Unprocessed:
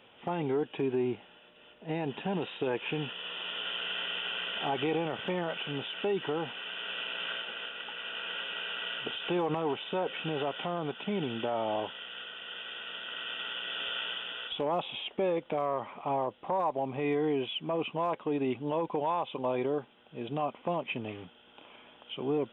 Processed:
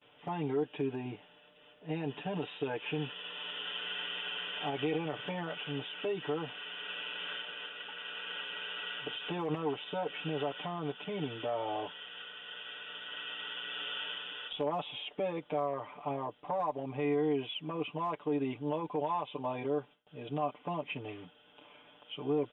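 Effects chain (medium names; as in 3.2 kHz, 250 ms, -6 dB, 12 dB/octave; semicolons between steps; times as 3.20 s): gate with hold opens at -50 dBFS; comb 6.8 ms, depth 96%; trim -6.5 dB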